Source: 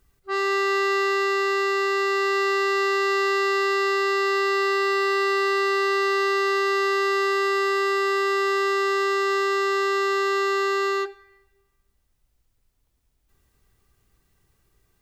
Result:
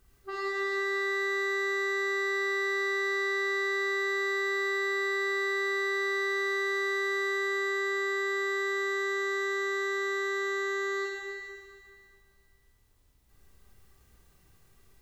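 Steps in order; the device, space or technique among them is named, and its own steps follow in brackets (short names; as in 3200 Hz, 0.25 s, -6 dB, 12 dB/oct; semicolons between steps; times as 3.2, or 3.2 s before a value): serial compression, peaks first (compressor, threshold -32 dBFS, peak gain reduction 10.5 dB; compressor 3:1, threshold -36 dBFS, peak gain reduction 5 dB); Schroeder reverb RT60 2.3 s, combs from 31 ms, DRR -3.5 dB; gain -1 dB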